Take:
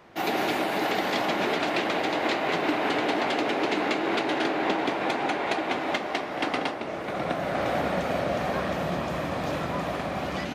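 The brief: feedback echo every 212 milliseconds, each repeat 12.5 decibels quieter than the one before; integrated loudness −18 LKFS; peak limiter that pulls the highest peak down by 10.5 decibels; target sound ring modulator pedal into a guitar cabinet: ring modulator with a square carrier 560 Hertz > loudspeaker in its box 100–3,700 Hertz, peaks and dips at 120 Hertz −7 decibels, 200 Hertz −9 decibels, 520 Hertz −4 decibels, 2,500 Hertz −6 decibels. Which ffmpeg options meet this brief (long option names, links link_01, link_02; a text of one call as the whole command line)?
ffmpeg -i in.wav -af "alimiter=limit=-22.5dB:level=0:latency=1,aecho=1:1:212|424|636:0.237|0.0569|0.0137,aeval=exprs='val(0)*sgn(sin(2*PI*560*n/s))':channel_layout=same,highpass=100,equalizer=frequency=120:width_type=q:width=4:gain=-7,equalizer=frequency=200:width_type=q:width=4:gain=-9,equalizer=frequency=520:width_type=q:width=4:gain=-4,equalizer=frequency=2500:width_type=q:width=4:gain=-6,lowpass=frequency=3700:width=0.5412,lowpass=frequency=3700:width=1.3066,volume=14.5dB" out.wav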